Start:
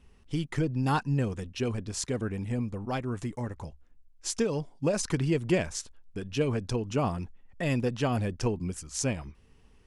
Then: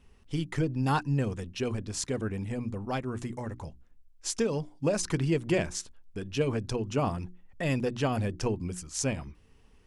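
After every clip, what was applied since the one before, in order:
mains-hum notches 60/120/180/240/300/360 Hz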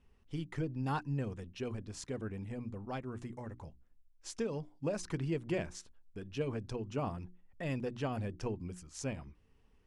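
high-shelf EQ 4,400 Hz −7.5 dB
level −8 dB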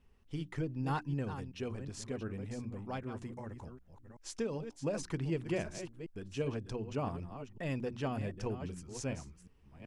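delay that plays each chunk backwards 379 ms, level −10 dB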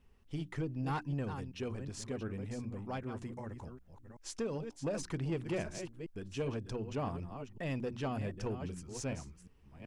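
soft clipping −29 dBFS, distortion −18 dB
level +1 dB

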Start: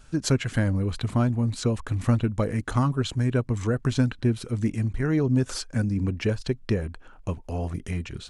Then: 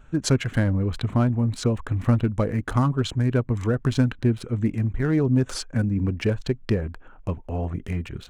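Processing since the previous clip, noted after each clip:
adaptive Wiener filter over 9 samples
level +2 dB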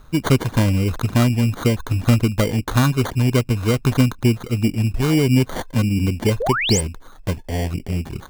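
decimation without filtering 17×
sound drawn into the spectrogram rise, 0:06.40–0:06.81, 420–9,400 Hz −26 dBFS
level +4.5 dB

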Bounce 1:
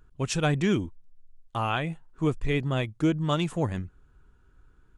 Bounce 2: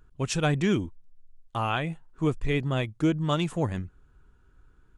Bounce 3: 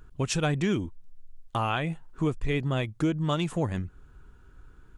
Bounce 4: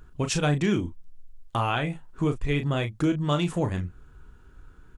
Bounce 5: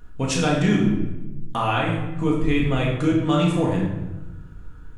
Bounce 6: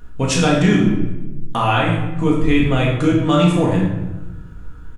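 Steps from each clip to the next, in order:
no processing that can be heard
downward compressor 2 to 1, threshold −36 dBFS, peak gain reduction 9.5 dB; level +6.5 dB
double-tracking delay 34 ms −8 dB; level +1.5 dB
convolution reverb RT60 1.1 s, pre-delay 4 ms, DRR −2.5 dB
double-tracking delay 17 ms −12 dB; level +5 dB

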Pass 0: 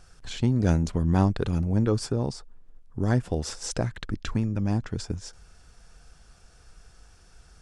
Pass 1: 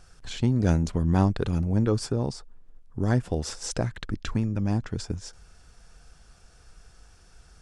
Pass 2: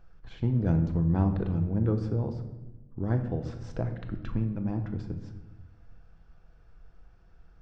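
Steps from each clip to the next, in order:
no processing that can be heard
head-to-tape spacing loss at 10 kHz 37 dB; convolution reverb RT60 1.1 s, pre-delay 6 ms, DRR 5.5 dB; level −4 dB

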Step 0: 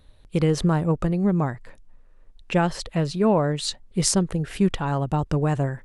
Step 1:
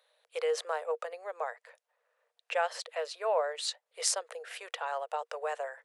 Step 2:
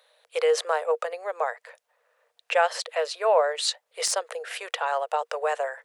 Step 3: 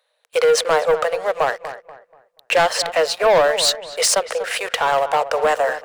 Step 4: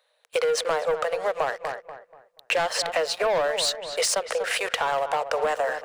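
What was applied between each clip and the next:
Chebyshev high-pass with heavy ripple 460 Hz, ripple 3 dB; level −4 dB
de-essing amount 55%; level +8.5 dB
notch filter 3,400 Hz, Q 30; leveller curve on the samples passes 3; feedback echo with a low-pass in the loop 241 ms, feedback 34%, low-pass 1,900 Hz, level −11.5 dB
parametric band 16,000 Hz −8.5 dB 0.31 octaves; downward compressor, threshold −22 dBFS, peak gain reduction 9.5 dB

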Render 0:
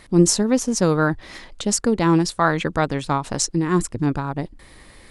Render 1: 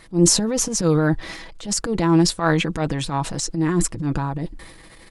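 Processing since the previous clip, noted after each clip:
transient designer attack −11 dB, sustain +7 dB
comb filter 6.1 ms, depth 44%
level −1 dB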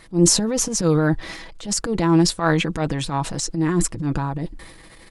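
no processing that can be heard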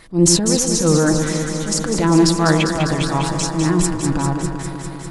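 delay that swaps between a low-pass and a high-pass 100 ms, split 1,100 Hz, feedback 87%, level −5.5 dB
level +2 dB

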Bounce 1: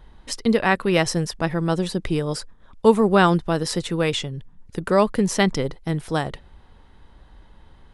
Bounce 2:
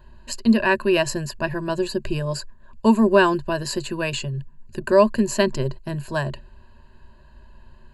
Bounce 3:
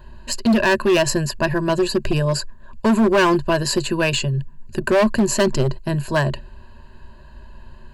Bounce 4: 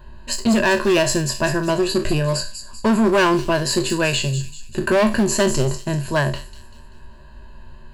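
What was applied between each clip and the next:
EQ curve with evenly spaced ripples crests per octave 1.4, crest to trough 17 dB; level −3.5 dB
in parallel at +1 dB: brickwall limiter −13.5 dBFS, peak gain reduction 10.5 dB; on the sum: hard clipping −12 dBFS, distortion −10 dB
peak hold with a decay on every bin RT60 0.32 s; delay with a high-pass on its return 194 ms, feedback 44%, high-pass 5,400 Hz, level −5 dB; level −1 dB

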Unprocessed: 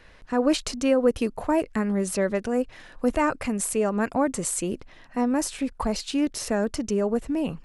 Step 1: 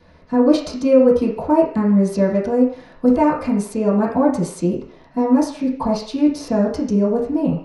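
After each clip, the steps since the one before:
convolution reverb RT60 0.50 s, pre-delay 3 ms, DRR −10.5 dB
level −11 dB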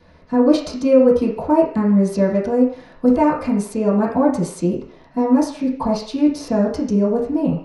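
no processing that can be heard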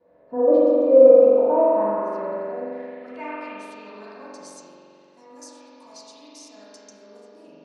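time-frequency box erased 0:02.22–0:02.70, 1,100–6,500 Hz
spring reverb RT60 3.4 s, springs 43 ms, chirp 45 ms, DRR −6.5 dB
band-pass filter sweep 540 Hz → 7,000 Hz, 0:00.98–0:04.85
level −4 dB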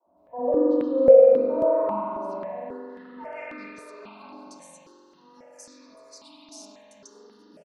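three-band delay without the direct sound mids, lows, highs 60/170 ms, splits 440/1,400 Hz
step-sequenced phaser 3.7 Hz 490–3,000 Hz
level +1.5 dB

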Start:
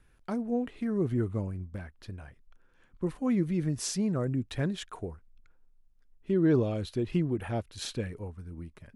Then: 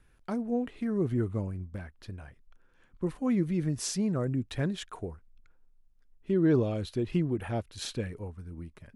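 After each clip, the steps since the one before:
no processing that can be heard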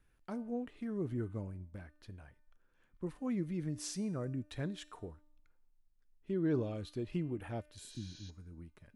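healed spectral selection 0:07.82–0:08.27, 350–6,900 Hz before
tuned comb filter 300 Hz, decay 0.72 s, mix 60%
level −1 dB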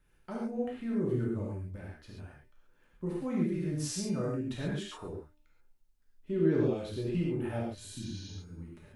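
reverb whose tail is shaped and stops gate 160 ms flat, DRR −4.5 dB

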